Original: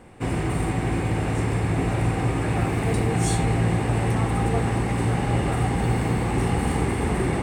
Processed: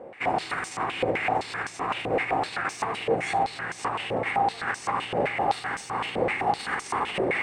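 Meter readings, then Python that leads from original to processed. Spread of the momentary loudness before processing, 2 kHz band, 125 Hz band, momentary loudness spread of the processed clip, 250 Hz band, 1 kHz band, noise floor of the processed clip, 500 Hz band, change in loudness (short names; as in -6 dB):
3 LU, +3.0 dB, -20.0 dB, 5 LU, -11.5 dB, +3.0 dB, -42 dBFS, -1.0 dB, -4.0 dB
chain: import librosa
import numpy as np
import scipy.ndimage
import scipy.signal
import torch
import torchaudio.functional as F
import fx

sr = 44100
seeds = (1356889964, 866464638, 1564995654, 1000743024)

p1 = fx.over_compress(x, sr, threshold_db=-25.0, ratio=-0.5)
p2 = x + (p1 * librosa.db_to_amplitude(3.0))
p3 = fx.filter_held_bandpass(p2, sr, hz=7.8, low_hz=550.0, high_hz=5900.0)
y = p3 * librosa.db_to_amplitude(5.5)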